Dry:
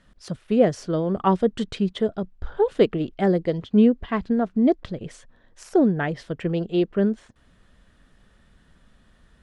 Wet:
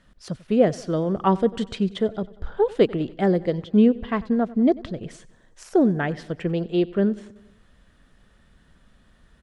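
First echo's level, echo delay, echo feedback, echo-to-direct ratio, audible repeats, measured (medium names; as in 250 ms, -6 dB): -21.0 dB, 94 ms, 59%, -19.0 dB, 4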